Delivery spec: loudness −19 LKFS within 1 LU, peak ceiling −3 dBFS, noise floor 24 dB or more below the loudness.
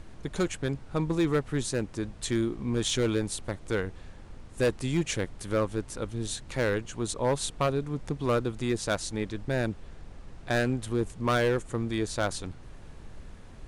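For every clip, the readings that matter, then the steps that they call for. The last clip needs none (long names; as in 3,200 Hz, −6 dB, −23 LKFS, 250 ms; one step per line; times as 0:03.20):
share of clipped samples 1.4%; peaks flattened at −19.5 dBFS; background noise floor −47 dBFS; target noise floor −54 dBFS; integrated loudness −30.0 LKFS; sample peak −19.5 dBFS; target loudness −19.0 LKFS
→ clipped peaks rebuilt −19.5 dBFS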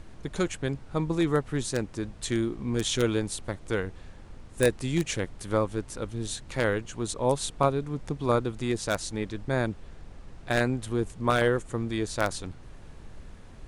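share of clipped samples 0.0%; background noise floor −47 dBFS; target noise floor −53 dBFS
→ noise reduction from a noise print 6 dB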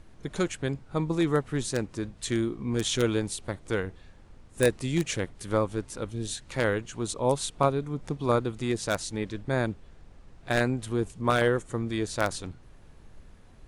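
background noise floor −52 dBFS; target noise floor −53 dBFS
→ noise reduction from a noise print 6 dB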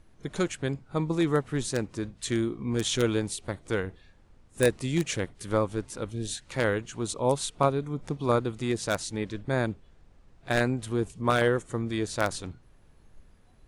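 background noise floor −58 dBFS; integrated loudness −29.0 LKFS; sample peak −10.5 dBFS; target loudness −19.0 LKFS
→ level +10 dB
brickwall limiter −3 dBFS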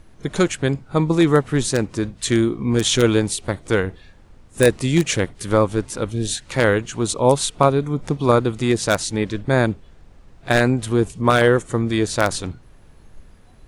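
integrated loudness −19.5 LKFS; sample peak −3.0 dBFS; background noise floor −48 dBFS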